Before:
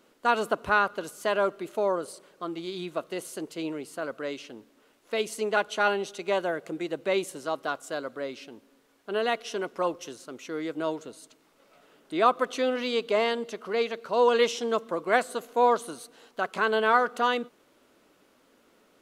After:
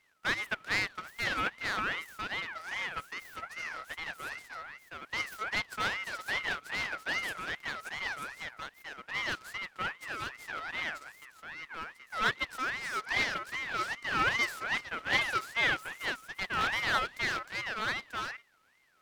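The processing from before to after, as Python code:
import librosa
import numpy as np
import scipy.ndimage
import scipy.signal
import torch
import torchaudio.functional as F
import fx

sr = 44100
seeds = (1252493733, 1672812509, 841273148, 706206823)

y = fx.highpass(x, sr, hz=190.0, slope=12, at=(9.21, 9.67))
y = y + 10.0 ** (-4.0 / 20.0) * np.pad(y, (int(938 * sr / 1000.0), 0))[:len(y)]
y = np.abs(y)
y = fx.ring_lfo(y, sr, carrier_hz=1700.0, swing_pct=25, hz=2.5)
y = F.gain(torch.from_numpy(y), -5.0).numpy()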